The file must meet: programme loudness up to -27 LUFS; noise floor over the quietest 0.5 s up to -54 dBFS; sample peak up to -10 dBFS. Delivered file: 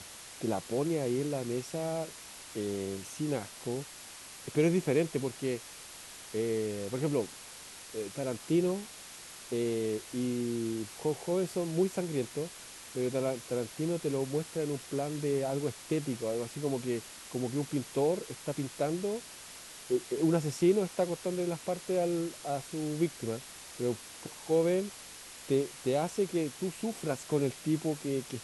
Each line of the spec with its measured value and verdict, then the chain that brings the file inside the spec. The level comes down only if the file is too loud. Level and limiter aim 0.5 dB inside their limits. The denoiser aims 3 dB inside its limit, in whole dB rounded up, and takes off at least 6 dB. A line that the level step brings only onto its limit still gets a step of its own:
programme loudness -33.0 LUFS: pass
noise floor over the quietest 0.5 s -48 dBFS: fail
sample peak -15.5 dBFS: pass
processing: noise reduction 9 dB, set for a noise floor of -48 dBFS

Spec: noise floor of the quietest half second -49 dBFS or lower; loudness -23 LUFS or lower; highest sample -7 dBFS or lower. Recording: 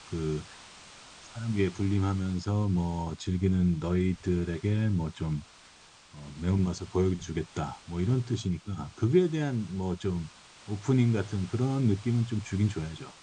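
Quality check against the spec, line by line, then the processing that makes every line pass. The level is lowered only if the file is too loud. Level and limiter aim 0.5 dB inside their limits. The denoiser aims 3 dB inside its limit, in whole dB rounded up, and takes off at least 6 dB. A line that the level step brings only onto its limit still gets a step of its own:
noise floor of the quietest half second -55 dBFS: pass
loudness -30.0 LUFS: pass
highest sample -12.0 dBFS: pass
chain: none needed

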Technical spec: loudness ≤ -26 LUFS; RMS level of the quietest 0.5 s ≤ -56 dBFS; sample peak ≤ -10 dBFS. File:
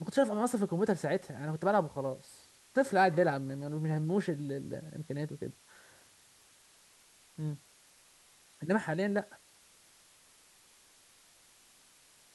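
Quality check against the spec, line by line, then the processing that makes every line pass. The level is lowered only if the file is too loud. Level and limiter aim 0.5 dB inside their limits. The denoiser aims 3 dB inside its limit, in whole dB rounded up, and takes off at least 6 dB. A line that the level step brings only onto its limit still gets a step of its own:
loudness -33.0 LUFS: pass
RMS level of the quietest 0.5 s -62 dBFS: pass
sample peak -14.5 dBFS: pass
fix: none needed

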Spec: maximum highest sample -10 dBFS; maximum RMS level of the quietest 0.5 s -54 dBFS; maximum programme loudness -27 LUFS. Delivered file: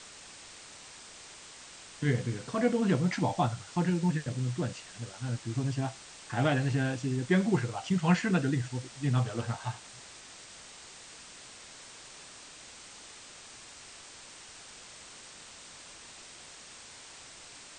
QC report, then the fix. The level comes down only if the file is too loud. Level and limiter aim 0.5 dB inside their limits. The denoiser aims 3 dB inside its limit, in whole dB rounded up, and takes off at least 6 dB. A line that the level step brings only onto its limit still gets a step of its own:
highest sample -14.0 dBFS: pass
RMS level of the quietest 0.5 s -50 dBFS: fail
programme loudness -30.5 LUFS: pass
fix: noise reduction 7 dB, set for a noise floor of -50 dBFS

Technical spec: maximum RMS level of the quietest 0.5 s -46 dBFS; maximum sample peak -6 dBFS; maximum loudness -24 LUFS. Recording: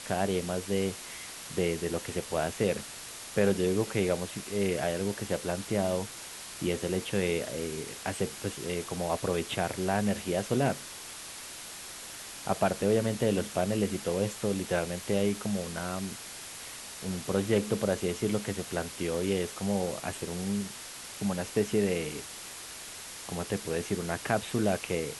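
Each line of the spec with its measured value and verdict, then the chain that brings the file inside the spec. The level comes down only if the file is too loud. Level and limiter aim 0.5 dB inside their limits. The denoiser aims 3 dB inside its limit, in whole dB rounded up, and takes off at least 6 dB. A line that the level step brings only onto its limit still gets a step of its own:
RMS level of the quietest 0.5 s -43 dBFS: fail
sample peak -11.0 dBFS: pass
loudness -31.5 LUFS: pass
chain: noise reduction 6 dB, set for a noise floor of -43 dBFS

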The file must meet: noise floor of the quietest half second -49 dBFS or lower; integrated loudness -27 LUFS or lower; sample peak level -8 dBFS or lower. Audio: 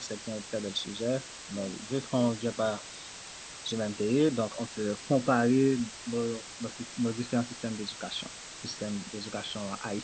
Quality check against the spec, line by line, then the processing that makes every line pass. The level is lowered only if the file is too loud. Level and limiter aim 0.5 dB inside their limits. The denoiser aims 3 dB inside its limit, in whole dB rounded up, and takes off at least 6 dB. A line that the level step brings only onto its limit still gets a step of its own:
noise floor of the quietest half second -45 dBFS: fail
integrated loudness -31.5 LUFS: pass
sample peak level -12.5 dBFS: pass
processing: noise reduction 7 dB, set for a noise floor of -45 dBFS

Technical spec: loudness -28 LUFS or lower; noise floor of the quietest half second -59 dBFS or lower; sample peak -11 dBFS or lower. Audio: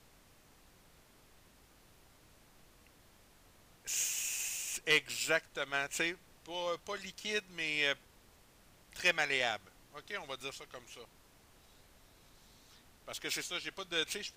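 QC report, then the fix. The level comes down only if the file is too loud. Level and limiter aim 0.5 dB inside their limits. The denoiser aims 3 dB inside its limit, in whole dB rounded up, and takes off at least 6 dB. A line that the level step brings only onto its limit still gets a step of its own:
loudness -35.0 LUFS: pass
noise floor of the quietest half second -63 dBFS: pass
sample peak -16.0 dBFS: pass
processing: none needed

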